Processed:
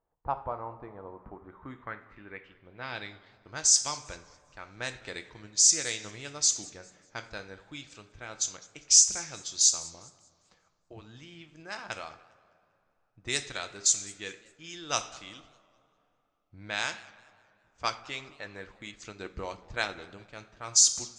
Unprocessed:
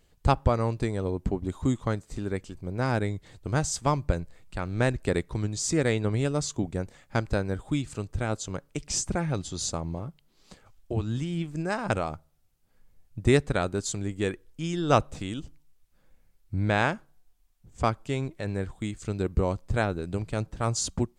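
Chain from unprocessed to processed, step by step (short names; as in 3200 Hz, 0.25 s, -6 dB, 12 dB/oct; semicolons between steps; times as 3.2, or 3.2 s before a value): pre-emphasis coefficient 0.97; two-slope reverb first 0.49 s, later 2.9 s, from -15 dB, DRR 7.5 dB; low-pass opened by the level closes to 1300 Hz, open at -32 dBFS; 17.84–20.14 harmonic-percussive split percussive +7 dB; low-pass sweep 920 Hz -> 6100 Hz, 0.98–3.64; warbling echo 0.199 s, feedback 36%, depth 211 cents, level -23 dB; gain +6.5 dB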